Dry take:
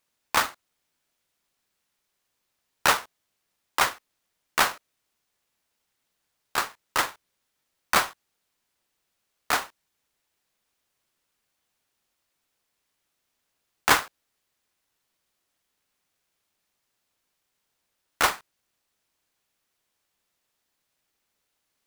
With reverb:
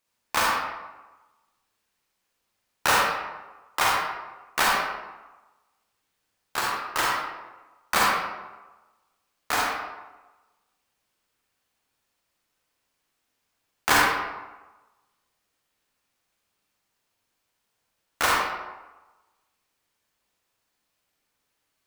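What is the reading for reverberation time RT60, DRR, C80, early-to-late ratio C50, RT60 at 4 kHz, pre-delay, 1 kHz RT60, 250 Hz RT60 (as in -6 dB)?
1.2 s, -4.0 dB, 1.5 dB, -1.5 dB, 0.65 s, 35 ms, 1.2 s, 1.1 s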